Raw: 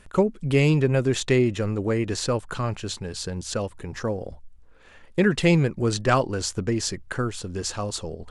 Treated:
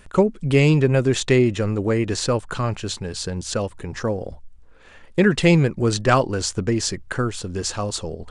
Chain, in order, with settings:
downsampling to 22,050 Hz
level +3.5 dB

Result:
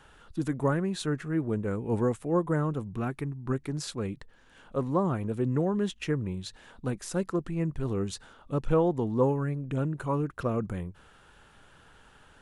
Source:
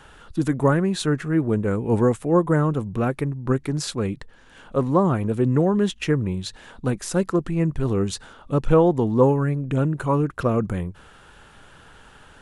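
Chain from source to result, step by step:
0:02.91–0:03.53: parametric band 530 Hz −13.5 dB 0.26 octaves
level −8 dB

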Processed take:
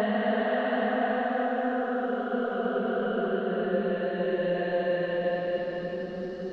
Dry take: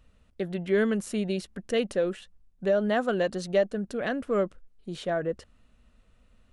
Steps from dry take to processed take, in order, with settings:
high-frequency loss of the air 240 metres
extreme stretch with random phases 15×, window 0.25 s, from 0:02.91
level −1 dB

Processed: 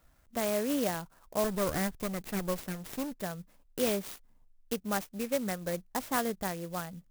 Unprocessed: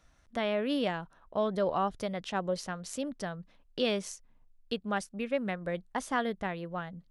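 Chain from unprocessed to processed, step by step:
0:01.44–0:03.21: lower of the sound and its delayed copy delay 0.48 ms
converter with an unsteady clock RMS 0.076 ms

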